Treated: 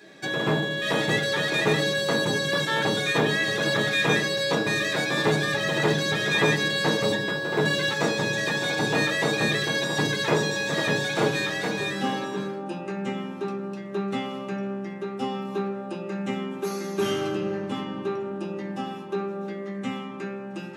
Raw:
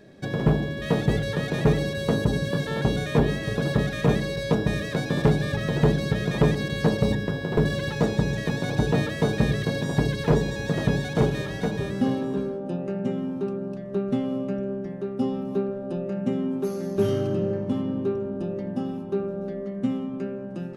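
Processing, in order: high-pass 580 Hz 6 dB/octave; in parallel at -4 dB: saturation -23.5 dBFS, distortion -14 dB; on the sum: reverberation RT60 0.40 s, pre-delay 3 ms, DRR -2.5 dB

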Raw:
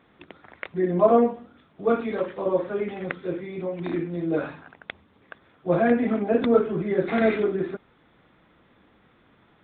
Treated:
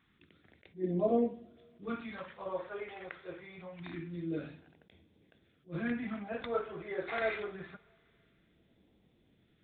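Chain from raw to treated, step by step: phase shifter stages 2, 0.25 Hz, lowest notch 210–1300 Hz; two-slope reverb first 0.55 s, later 3.5 s, from -18 dB, DRR 15.5 dB; attacks held to a fixed rise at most 280 dB/s; trim -7.5 dB

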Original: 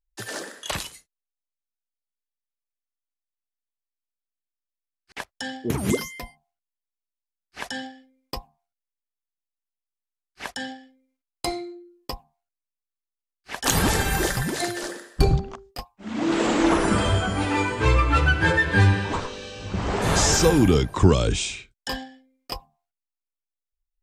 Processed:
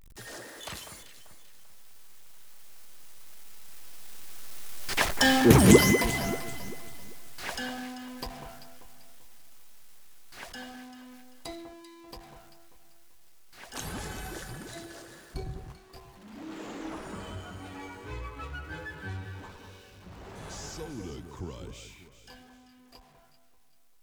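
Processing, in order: jump at every zero crossing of -30 dBFS; Doppler pass-by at 5.38 s, 13 m/s, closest 5.7 m; echo whose repeats swap between lows and highs 195 ms, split 1.7 kHz, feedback 58%, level -7.5 dB; trim +7.5 dB

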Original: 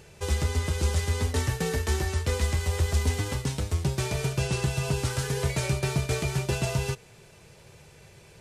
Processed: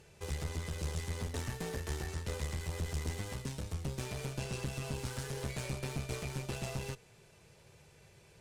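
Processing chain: one-sided clip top -34.5 dBFS; trim -8.5 dB

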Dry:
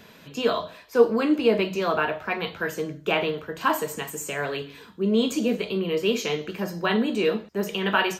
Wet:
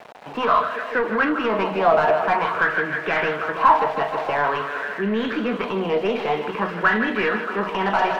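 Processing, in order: tracing distortion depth 0.37 ms; on a send: thinning echo 157 ms, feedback 78%, high-pass 160 Hz, level -13 dB; on the sum: peak limiter -15.5 dBFS, peak gain reduction 9.5 dB; Gaussian low-pass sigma 2.3 samples; small samples zeroed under -46 dBFS; dynamic bell 490 Hz, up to -7 dB, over -37 dBFS, Q 0.8; overdrive pedal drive 19 dB, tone 1.2 kHz, clips at -9.5 dBFS; sweeping bell 0.49 Hz 690–1800 Hz +13 dB

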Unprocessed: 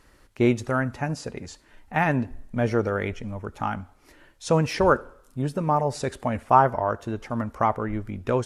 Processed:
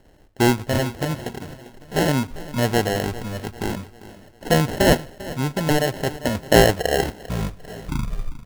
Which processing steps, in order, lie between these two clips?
tape stop on the ending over 2.15 s; sample-and-hold 37×; feedback delay 397 ms, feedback 48%, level -17 dB; trim +3 dB

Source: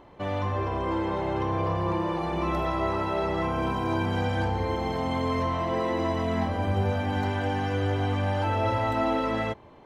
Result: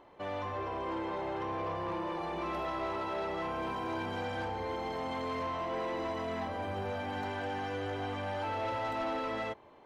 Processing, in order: tone controls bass -10 dB, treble -2 dB; saturation -25 dBFS, distortion -15 dB; trim -4.5 dB

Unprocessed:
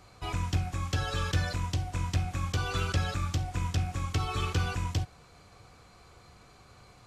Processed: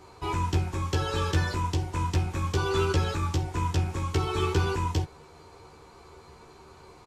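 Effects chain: doubling 13 ms -4 dB; small resonant body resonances 390/910 Hz, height 13 dB, ringing for 30 ms

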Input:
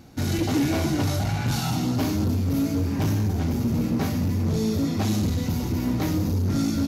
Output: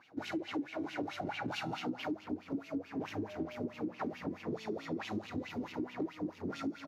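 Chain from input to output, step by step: reverberation RT60 1.6 s, pre-delay 6 ms, DRR 10.5 dB; wah-wah 4.6 Hz 300–2900 Hz, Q 5.7; 3.27–3.72 s: whistle 610 Hz -49 dBFS; speakerphone echo 240 ms, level -15 dB; compression 16:1, threshold -39 dBFS, peak gain reduction 17 dB; trim +5.5 dB

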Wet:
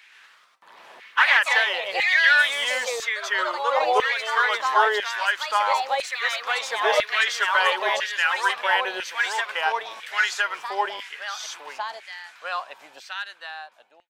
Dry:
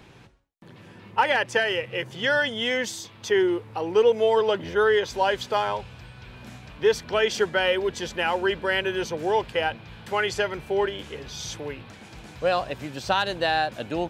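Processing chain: fade out at the end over 2.80 s; ever faster or slower copies 121 ms, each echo +2 st, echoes 3; LFO high-pass saw down 1 Hz 700–2000 Hz

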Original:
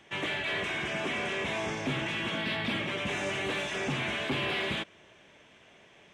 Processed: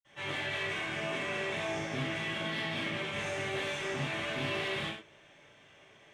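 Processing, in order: saturation -27.5 dBFS, distortion -18 dB; reverberation, pre-delay 47 ms, DRR -60 dB; trim +2 dB

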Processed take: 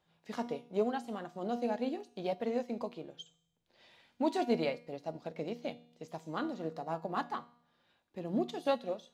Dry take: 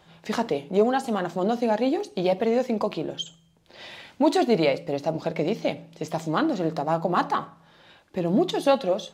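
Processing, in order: feedback comb 240 Hz, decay 0.73 s, mix 70%; upward expansion 1.5:1, over -46 dBFS

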